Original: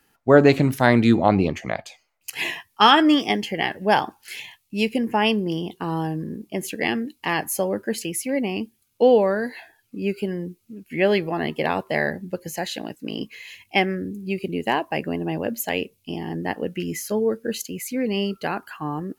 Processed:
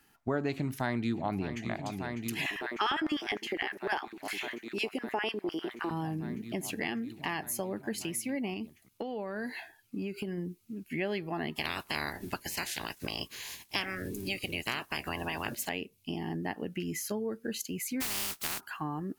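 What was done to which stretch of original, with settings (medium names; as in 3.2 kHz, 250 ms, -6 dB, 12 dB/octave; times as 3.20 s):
0.51–1.68 s: echo throw 600 ms, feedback 85%, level -14 dB
2.46–5.91 s: LFO high-pass square 9.9 Hz 370–1500 Hz
8.53–10.38 s: compression, threshold -26 dBFS
11.55–15.67 s: spectral peaks clipped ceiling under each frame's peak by 26 dB
18.00–18.59 s: spectral contrast reduction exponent 0.12
whole clip: peaking EQ 510 Hz -8.5 dB 0.34 oct; compression 3:1, threshold -32 dBFS; trim -1.5 dB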